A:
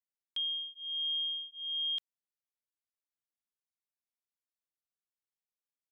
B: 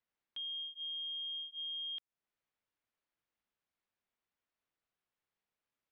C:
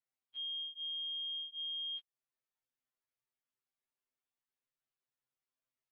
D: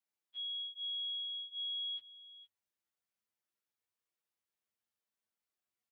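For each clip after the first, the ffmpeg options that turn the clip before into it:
-af "lowpass=2800,alimiter=level_in=14.1:limit=0.0631:level=0:latency=1:release=333,volume=0.0708,volume=2.82"
-af "afftfilt=real='re*2.45*eq(mod(b,6),0)':imag='im*2.45*eq(mod(b,6),0)':win_size=2048:overlap=0.75,volume=0.562"
-af "afreqshift=89,aecho=1:1:465:0.168"

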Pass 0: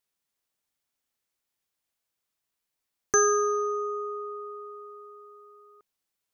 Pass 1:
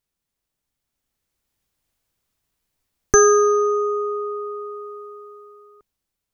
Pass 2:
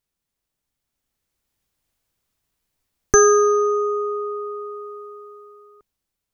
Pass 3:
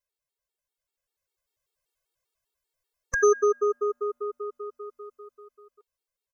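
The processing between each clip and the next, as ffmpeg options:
-af "lowshelf=f=390:g=7.5,dynaudnorm=f=380:g=7:m=2.51,lowshelf=f=88:g=11.5"
-af anull
-af "lowshelf=f=330:t=q:w=1.5:g=-8.5,aecho=1:1:1.9:0.51,afftfilt=real='re*gt(sin(2*PI*5.1*pts/sr)*(1-2*mod(floor(b*sr/1024/240),2)),0)':imag='im*gt(sin(2*PI*5.1*pts/sr)*(1-2*mod(floor(b*sr/1024/240),2)),0)':win_size=1024:overlap=0.75,volume=0.562"

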